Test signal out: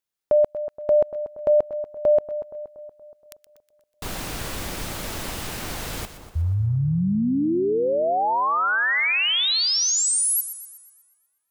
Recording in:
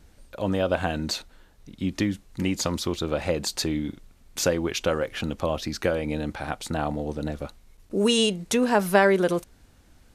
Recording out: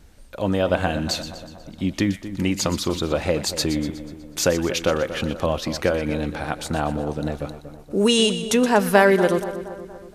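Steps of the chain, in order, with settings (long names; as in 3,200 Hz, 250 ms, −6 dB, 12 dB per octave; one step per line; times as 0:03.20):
echo with a time of its own for lows and highs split 1,400 Hz, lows 236 ms, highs 122 ms, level −12 dB
level +3.5 dB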